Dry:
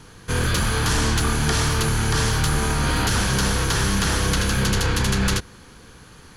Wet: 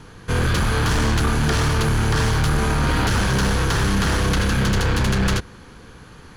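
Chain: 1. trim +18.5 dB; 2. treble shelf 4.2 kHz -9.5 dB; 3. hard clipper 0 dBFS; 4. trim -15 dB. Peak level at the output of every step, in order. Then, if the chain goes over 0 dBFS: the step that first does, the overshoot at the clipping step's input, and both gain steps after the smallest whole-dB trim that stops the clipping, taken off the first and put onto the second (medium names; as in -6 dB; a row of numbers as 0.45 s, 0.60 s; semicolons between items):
+8.0 dBFS, +7.0 dBFS, 0.0 dBFS, -15.0 dBFS; step 1, 7.0 dB; step 1 +11.5 dB, step 4 -8 dB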